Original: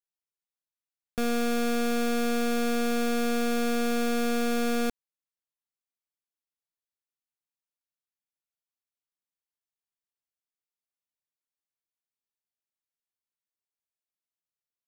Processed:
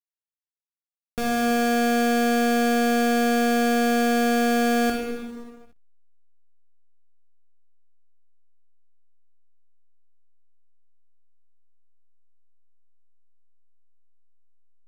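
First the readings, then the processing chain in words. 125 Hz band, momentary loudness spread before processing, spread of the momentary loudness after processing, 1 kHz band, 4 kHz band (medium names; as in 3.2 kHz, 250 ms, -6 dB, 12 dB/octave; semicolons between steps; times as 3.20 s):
no reading, 3 LU, 9 LU, +9.5 dB, +4.5 dB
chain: plate-style reverb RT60 2 s, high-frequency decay 0.85×, DRR -0.5 dB; hysteresis with a dead band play -40.5 dBFS; trim +2.5 dB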